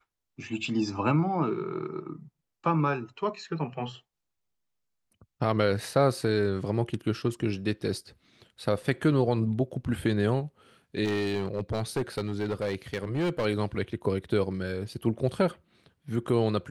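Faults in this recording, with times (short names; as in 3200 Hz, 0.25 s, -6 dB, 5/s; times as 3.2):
11.04–13.46 clipped -24 dBFS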